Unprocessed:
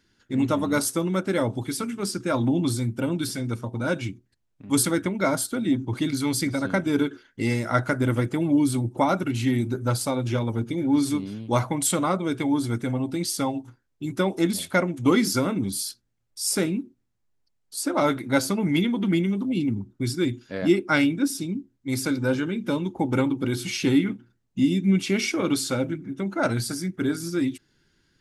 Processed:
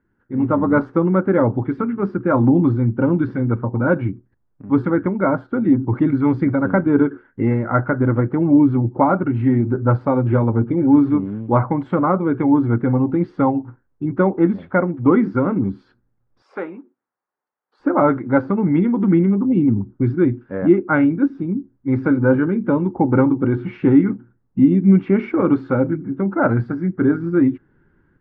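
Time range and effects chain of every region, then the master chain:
16.42–17.8 HPF 710 Hz + dynamic EQ 1600 Hz, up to -4 dB, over -47 dBFS, Q 2
whole clip: notch 650 Hz, Q 12; AGC gain up to 10 dB; LPF 1500 Hz 24 dB/oct

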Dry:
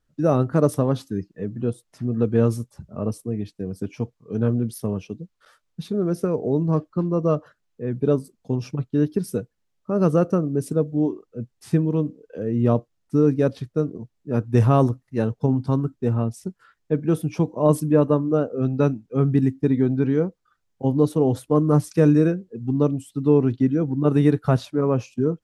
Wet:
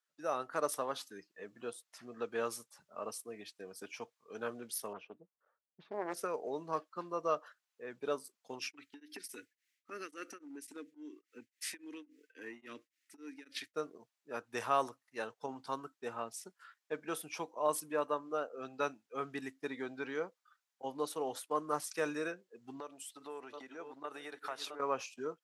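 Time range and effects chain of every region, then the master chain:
4.93–6.17 low-pass opened by the level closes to 310 Hz, open at -20 dBFS + high shelf 3500 Hz -7.5 dB + Doppler distortion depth 0.38 ms
8.59–13.74 EQ curve 110 Hz 0 dB, 160 Hz -15 dB, 280 Hz +13 dB, 750 Hz -23 dB, 2000 Hz +13 dB, 3500 Hz +5 dB + compressor 5:1, threshold -25 dBFS + beating tremolo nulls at 3.6 Hz
22.8–24.8 reverse delay 0.399 s, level -13 dB + compressor 5:1, threshold -24 dBFS + tone controls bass -11 dB, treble -1 dB
whole clip: AGC gain up to 6.5 dB; HPF 1000 Hz 12 dB/oct; gain -6.5 dB

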